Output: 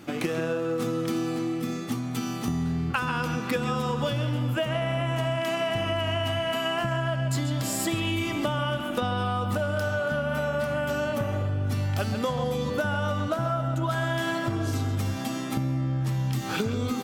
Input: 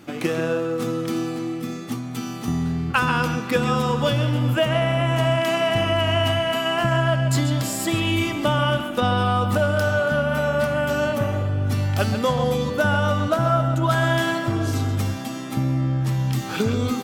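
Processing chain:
downward compressor, threshold −24 dBFS, peak gain reduction 9 dB

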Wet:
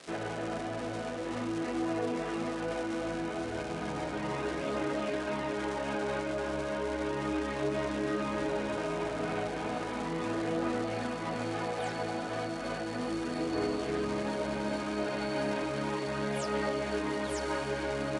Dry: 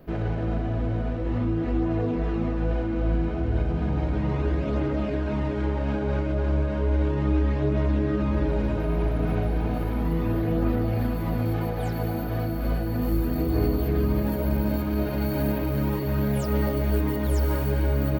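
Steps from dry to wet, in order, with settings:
surface crackle 400 per second −35 dBFS
meter weighting curve A
Ogg Vorbis 48 kbit/s 22,050 Hz

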